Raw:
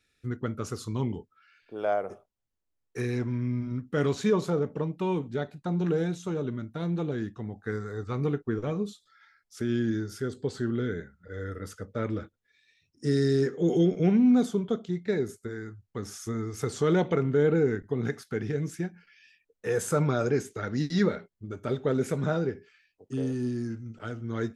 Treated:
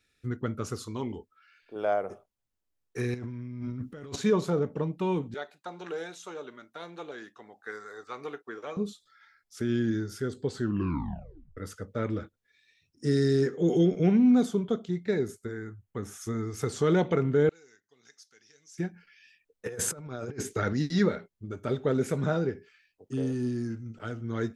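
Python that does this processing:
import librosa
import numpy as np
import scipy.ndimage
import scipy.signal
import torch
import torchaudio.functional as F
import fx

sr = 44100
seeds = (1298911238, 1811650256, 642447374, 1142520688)

y = fx.peak_eq(x, sr, hz=140.0, db=-11.0, octaves=0.99, at=(0.83, 1.76))
y = fx.over_compress(y, sr, threshold_db=-38.0, ratio=-1.0, at=(3.14, 4.16))
y = fx.highpass(y, sr, hz=660.0, slope=12, at=(5.34, 8.77))
y = fx.peak_eq(y, sr, hz=4800.0, db=-11.5, octaves=0.61, at=(15.51, 16.21))
y = fx.bandpass_q(y, sr, hz=5800.0, q=3.3, at=(17.49, 18.78))
y = fx.over_compress(y, sr, threshold_db=-32.0, ratio=-0.5, at=(19.66, 20.73))
y = fx.edit(y, sr, fx.tape_stop(start_s=10.62, length_s=0.95), tone=tone)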